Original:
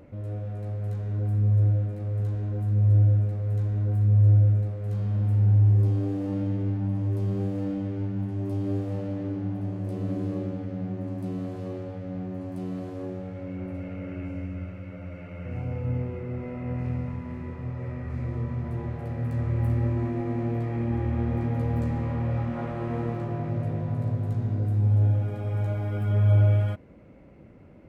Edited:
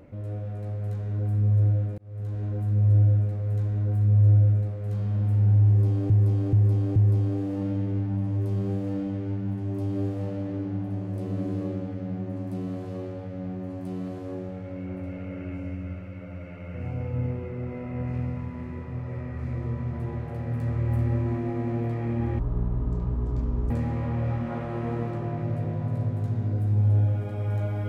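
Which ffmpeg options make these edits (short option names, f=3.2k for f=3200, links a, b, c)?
-filter_complex "[0:a]asplit=7[a][b][c][d][e][f][g];[a]atrim=end=1.98,asetpts=PTS-STARTPTS,afade=t=out:st=1.976:d=0.004:c=hsin[h];[b]atrim=start=1.98:end=6.102,asetpts=PTS-STARTPTS,afade=t=in:d=0.46[i];[c]atrim=start=5.668:end=6.102[j];[d]atrim=start=5.668:end=6.102[k];[e]atrim=start=5.668:end=21.104[l];[f]atrim=start=21.1:end=21.77,asetpts=PTS-STARTPTS,asetrate=22491,aresample=44100,atrim=end_sample=57935,asetpts=PTS-STARTPTS[m];[g]atrim=start=21.766[n];[h][i]concat=n=2:v=0:a=1[o];[o][j]acrossfade=d=0.004:c1=hsin:c2=hsin[p];[p][k]acrossfade=d=0.004:c1=hsin:c2=hsin[q];[q][l]acrossfade=d=0.004:c1=hsin:c2=hsin[r];[r][m]acrossfade=d=0.004:c1=hsin:c2=hsin[s];[s][n]acrossfade=d=0.004:c1=hsin:c2=hsin"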